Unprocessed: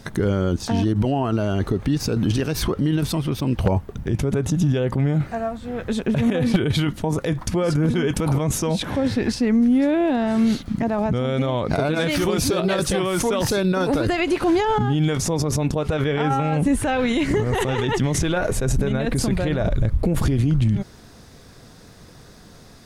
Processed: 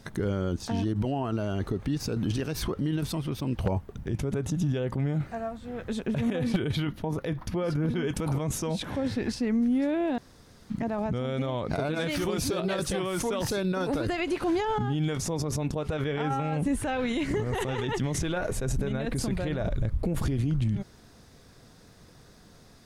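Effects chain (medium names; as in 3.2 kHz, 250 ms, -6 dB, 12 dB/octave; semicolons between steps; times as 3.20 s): 6.75–8.03 s: peaking EQ 7.8 kHz -11.5 dB 0.76 oct; 10.18–10.70 s: room tone; trim -8 dB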